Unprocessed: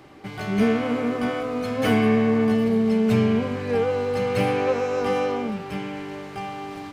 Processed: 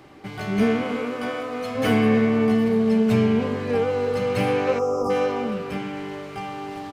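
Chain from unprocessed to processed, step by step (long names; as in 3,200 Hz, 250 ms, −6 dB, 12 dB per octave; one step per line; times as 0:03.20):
0:00.83–0:01.75: low-shelf EQ 290 Hz −9.5 dB
far-end echo of a speakerphone 310 ms, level −9 dB
0:04.79–0:05.10: time-frequency box erased 1,400–4,800 Hz
spring reverb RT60 1.4 s, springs 54 ms, DRR 19.5 dB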